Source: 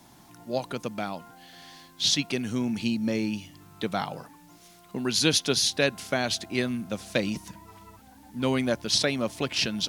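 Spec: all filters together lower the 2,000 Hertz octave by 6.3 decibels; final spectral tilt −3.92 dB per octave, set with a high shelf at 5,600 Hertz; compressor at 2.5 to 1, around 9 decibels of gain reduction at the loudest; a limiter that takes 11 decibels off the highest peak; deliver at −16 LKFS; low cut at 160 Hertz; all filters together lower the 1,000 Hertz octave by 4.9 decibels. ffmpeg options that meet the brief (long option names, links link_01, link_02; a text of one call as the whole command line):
ffmpeg -i in.wav -af "highpass=160,equalizer=frequency=1000:width_type=o:gain=-5.5,equalizer=frequency=2000:width_type=o:gain=-6,highshelf=frequency=5600:gain=-6,acompressor=threshold=-35dB:ratio=2.5,volume=23dB,alimiter=limit=-5.5dB:level=0:latency=1" out.wav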